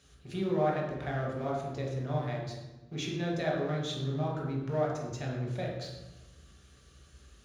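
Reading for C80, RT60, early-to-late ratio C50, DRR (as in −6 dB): 5.0 dB, 1.1 s, 2.0 dB, −3.5 dB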